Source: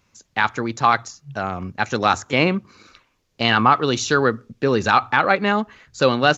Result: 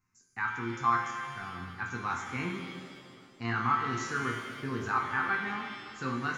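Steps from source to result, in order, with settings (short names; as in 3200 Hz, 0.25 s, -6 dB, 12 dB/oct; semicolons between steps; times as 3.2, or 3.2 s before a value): fixed phaser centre 1400 Hz, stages 4; resonator bank F2 sus4, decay 0.27 s; on a send: darkening echo 0.371 s, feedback 82%, low-pass 2000 Hz, level -24 dB; on the sum: shimmer reverb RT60 1.9 s, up +7 st, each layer -8 dB, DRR 4 dB; gain -1.5 dB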